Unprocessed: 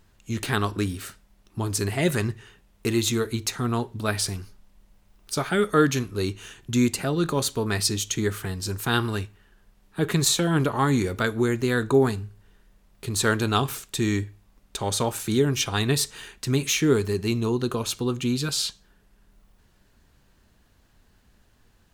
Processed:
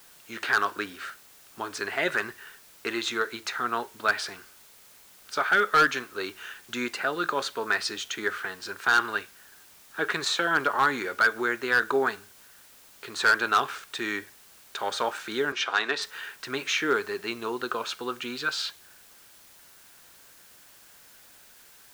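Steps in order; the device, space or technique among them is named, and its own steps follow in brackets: drive-through speaker (BPF 530–3900 Hz; bell 1500 Hz +10 dB 0.59 oct; hard clip -14.5 dBFS, distortion -13 dB; white noise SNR 24 dB); 15.52–16.02 three-band isolator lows -18 dB, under 210 Hz, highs -16 dB, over 7100 Hz

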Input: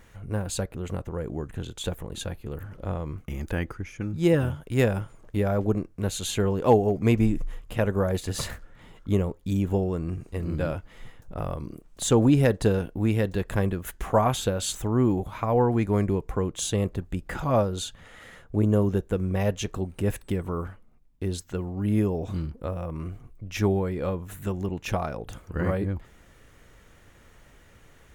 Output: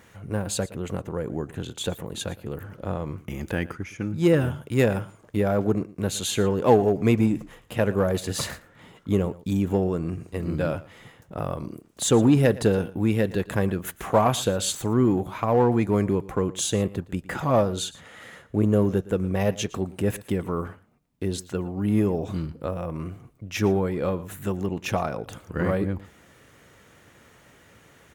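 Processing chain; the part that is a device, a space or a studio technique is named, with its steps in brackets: parallel distortion (in parallel at -7 dB: hard clip -21 dBFS, distortion -9 dB); on the sum: HPF 110 Hz 12 dB/oct; echo 0.115 s -19 dB

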